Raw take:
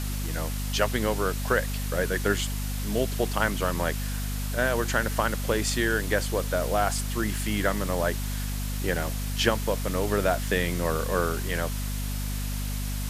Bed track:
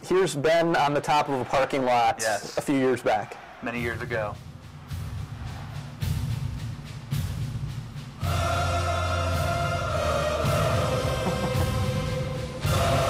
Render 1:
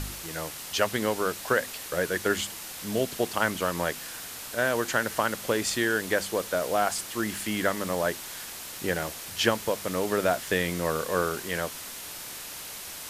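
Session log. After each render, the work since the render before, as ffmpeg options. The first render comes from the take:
-af "bandreject=f=50:t=h:w=4,bandreject=f=100:t=h:w=4,bandreject=f=150:t=h:w=4,bandreject=f=200:t=h:w=4,bandreject=f=250:t=h:w=4"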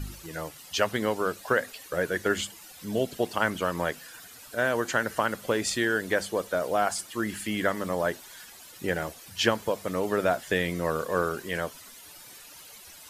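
-af "afftdn=nr=13:nf=-40"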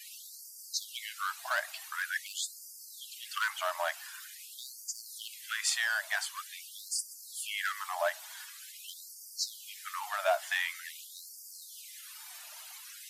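-filter_complex "[0:a]acrossover=split=130|690|2500[s0][s1][s2][s3];[s2]asoftclip=type=hard:threshold=0.0355[s4];[s0][s1][s4][s3]amix=inputs=4:normalize=0,afftfilt=real='re*gte(b*sr/1024,560*pow(4600/560,0.5+0.5*sin(2*PI*0.46*pts/sr)))':imag='im*gte(b*sr/1024,560*pow(4600/560,0.5+0.5*sin(2*PI*0.46*pts/sr)))':win_size=1024:overlap=0.75"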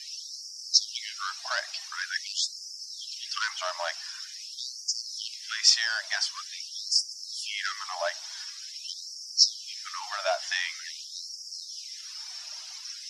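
-af "lowpass=f=5400:t=q:w=10"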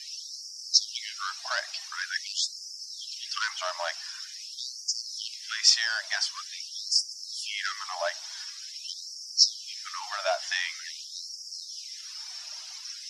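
-af anull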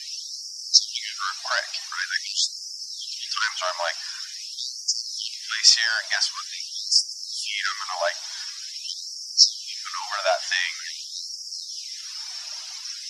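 -af "volume=1.88,alimiter=limit=0.794:level=0:latency=1"

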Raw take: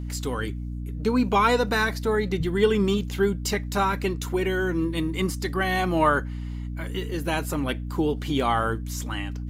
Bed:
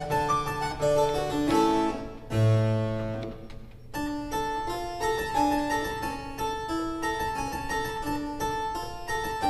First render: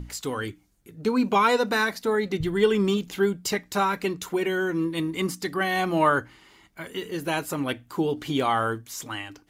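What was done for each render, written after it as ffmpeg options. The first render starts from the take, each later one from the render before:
-af "bandreject=f=60:t=h:w=6,bandreject=f=120:t=h:w=6,bandreject=f=180:t=h:w=6,bandreject=f=240:t=h:w=6,bandreject=f=300:t=h:w=6"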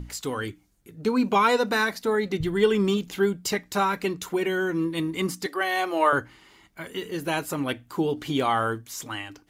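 -filter_complex "[0:a]asettb=1/sr,asplit=3[s0][s1][s2];[s0]atrim=end=5.464[s3];[s1]atrim=start=5.46:end=6.13,asetpts=PTS-STARTPTS,afade=t=in:d=0.004:c=qsin,afade=t=out:st=0.666:d=0.004:c=qsin,highpass=f=340:w=0.5412,highpass=f=340:w=1.3066[s4];[s2]atrim=start=6.126[s5];[s3][s4]acrossfade=d=0.004:c1=hsin:c2=qsin[s6];[s6][s5]acrossfade=d=0.004:c1=qsin:c2=hsin"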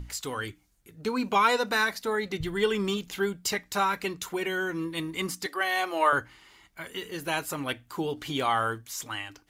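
-af "equalizer=f=250:t=o:w=2.7:g=-7"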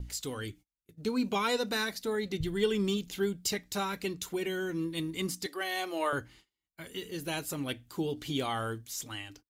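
-af "agate=range=0.0282:threshold=0.00316:ratio=16:detection=peak,firequalizer=gain_entry='entry(230,0);entry(1000,-11);entry(3600,-2)':delay=0.05:min_phase=1"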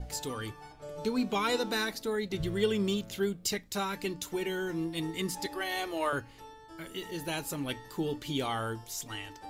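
-filter_complex "[1:a]volume=0.106[s0];[0:a][s0]amix=inputs=2:normalize=0"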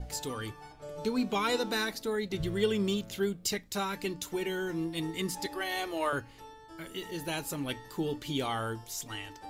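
-af anull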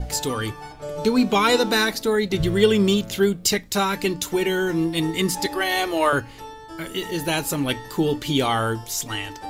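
-af "volume=3.76"

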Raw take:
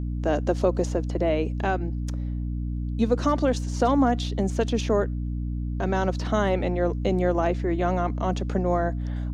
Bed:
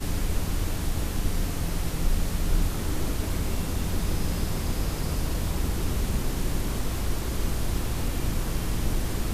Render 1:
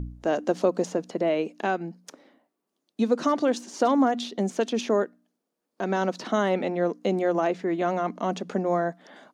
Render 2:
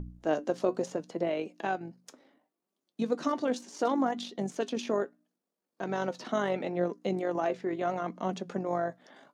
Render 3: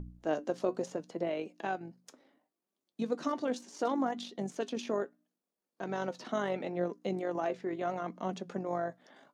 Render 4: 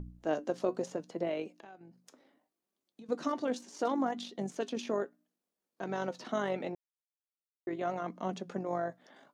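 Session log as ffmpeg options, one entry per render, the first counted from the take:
-af "bandreject=f=60:t=h:w=4,bandreject=f=120:t=h:w=4,bandreject=f=180:t=h:w=4,bandreject=f=240:t=h:w=4,bandreject=f=300:t=h:w=4"
-af "tremolo=f=48:d=0.4,flanger=delay=4.9:depth=3.4:regen=67:speed=0.72:shape=triangular"
-af "volume=0.668"
-filter_complex "[0:a]asettb=1/sr,asplit=3[s0][s1][s2];[s0]atrim=end=1.524[s3];[s1]atrim=start=1.52:end=3.09,asetpts=PTS-STARTPTS,afade=t=in:d=0.004:c=qsin,afade=t=out:st=1.566:d=0.004:c=qsin,acompressor=threshold=0.00282:ratio=4:attack=3.2:release=140:knee=1:detection=peak[s4];[s2]atrim=start=3.086[s5];[s3][s4]acrossfade=d=0.004:c1=hsin:c2=qsin[s6];[s6][s5]acrossfade=d=0.004:c1=qsin:c2=hsin,asplit=3[s7][s8][s9];[s7]atrim=end=6.75,asetpts=PTS-STARTPTS,afade=t=out:st=6.746:d=0.004:c=hsin[s10];[s8]atrim=start=6.75:end=7.67,asetpts=PTS-STARTPTS,volume=0[s11];[s9]atrim=start=7.67,asetpts=PTS-STARTPTS,afade=t=in:d=0.004:c=hsin[s12];[s10][s11][s12]concat=n=3:v=0:a=1"

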